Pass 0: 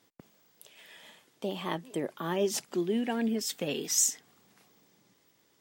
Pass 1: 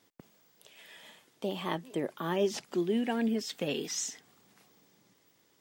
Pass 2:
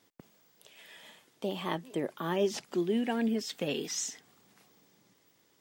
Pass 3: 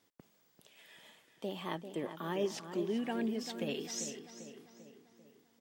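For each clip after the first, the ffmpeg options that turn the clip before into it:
-filter_complex "[0:a]acrossover=split=5300[s0][s1];[s1]acompressor=threshold=0.00316:ratio=4:attack=1:release=60[s2];[s0][s2]amix=inputs=2:normalize=0"
-af anull
-filter_complex "[0:a]asplit=2[s0][s1];[s1]adelay=394,lowpass=f=3200:p=1,volume=0.355,asplit=2[s2][s3];[s3]adelay=394,lowpass=f=3200:p=1,volume=0.53,asplit=2[s4][s5];[s5]adelay=394,lowpass=f=3200:p=1,volume=0.53,asplit=2[s6][s7];[s7]adelay=394,lowpass=f=3200:p=1,volume=0.53,asplit=2[s8][s9];[s9]adelay=394,lowpass=f=3200:p=1,volume=0.53,asplit=2[s10][s11];[s11]adelay=394,lowpass=f=3200:p=1,volume=0.53[s12];[s0][s2][s4][s6][s8][s10][s12]amix=inputs=7:normalize=0,volume=0.531"

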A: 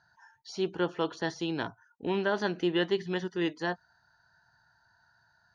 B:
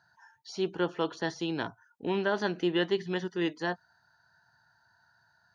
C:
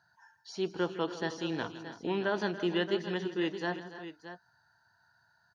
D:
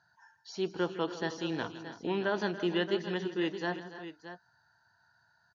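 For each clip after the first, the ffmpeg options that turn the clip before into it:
-af "highpass=82"
-af "aecho=1:1:161|280|311|623:0.168|0.168|0.168|0.251,volume=0.75"
-af "aresample=16000,aresample=44100"

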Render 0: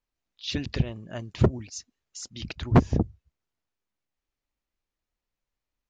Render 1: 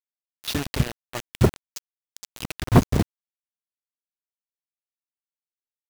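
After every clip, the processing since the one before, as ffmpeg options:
-af "acrusher=bits=4:mix=0:aa=0.000001,volume=1.33"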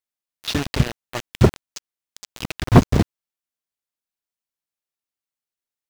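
-filter_complex "[0:a]acrossover=split=7500[s0][s1];[s1]acompressor=threshold=0.00794:ratio=4:attack=1:release=60[s2];[s0][s2]amix=inputs=2:normalize=0,volume=1.58"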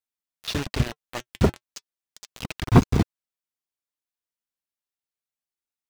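-af "flanger=delay=0.8:depth=3.4:regen=-62:speed=0.35:shape=sinusoidal"

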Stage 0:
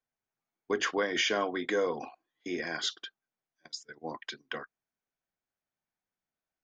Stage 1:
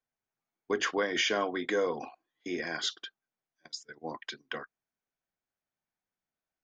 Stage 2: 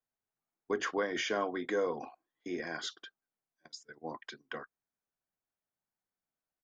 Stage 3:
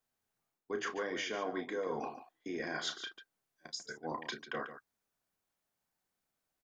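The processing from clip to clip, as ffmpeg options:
-af anull
-af "firequalizer=gain_entry='entry(1200,0);entry(2700,-6);entry(7700,-3)':delay=0.05:min_phase=1,volume=0.75"
-af "areverse,acompressor=threshold=0.00794:ratio=5,areverse,aecho=1:1:32.07|142.9:0.398|0.282,volume=2"

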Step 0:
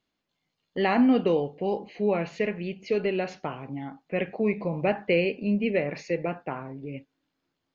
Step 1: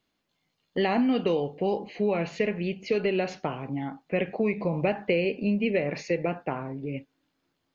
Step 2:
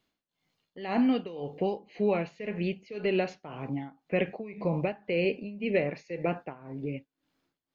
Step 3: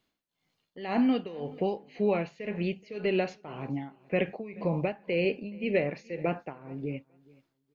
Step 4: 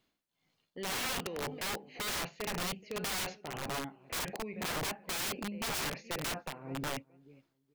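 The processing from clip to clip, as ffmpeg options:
-filter_complex "[0:a]acrossover=split=1000|2200[s0][s1][s2];[s0]acompressor=threshold=0.0501:ratio=4[s3];[s1]acompressor=threshold=0.00562:ratio=4[s4];[s2]acompressor=threshold=0.0141:ratio=4[s5];[s3][s4][s5]amix=inputs=3:normalize=0,volume=1.5"
-af "tremolo=f=1.9:d=0.87"
-af "aecho=1:1:426|852:0.0631|0.0101"
-af "aeval=exprs='(mod(33.5*val(0)+1,2)-1)/33.5':c=same"

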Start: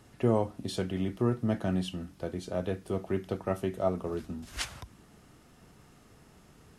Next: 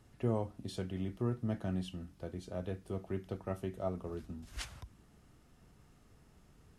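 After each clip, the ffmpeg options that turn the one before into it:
-af "lowshelf=f=98:g=10.5,volume=0.355"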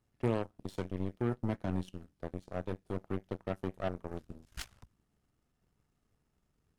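-filter_complex "[0:a]asplit=2[s0][s1];[s1]alimiter=level_in=1.78:limit=0.0631:level=0:latency=1:release=293,volume=0.562,volume=0.891[s2];[s0][s2]amix=inputs=2:normalize=0,aeval=exprs='0.119*(cos(1*acos(clip(val(0)/0.119,-1,1)))-cos(1*PI/2))+0.0335*(cos(3*acos(clip(val(0)/0.119,-1,1)))-cos(3*PI/2))+0.0168*(cos(5*acos(clip(val(0)/0.119,-1,1)))-cos(5*PI/2))+0.0133*(cos(7*acos(clip(val(0)/0.119,-1,1)))-cos(7*PI/2))+0.00376*(cos(8*acos(clip(val(0)/0.119,-1,1)))-cos(8*PI/2))':c=same,volume=1.19"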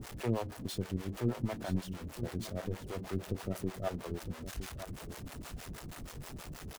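-filter_complex "[0:a]aeval=exprs='val(0)+0.5*0.0133*sgn(val(0))':c=same,acrossover=split=450[s0][s1];[s0]aeval=exprs='val(0)*(1-1/2+1/2*cos(2*PI*6.3*n/s))':c=same[s2];[s1]aeval=exprs='val(0)*(1-1/2-1/2*cos(2*PI*6.3*n/s))':c=same[s3];[s2][s3]amix=inputs=2:normalize=0,aecho=1:1:962:0.282,volume=1.33"

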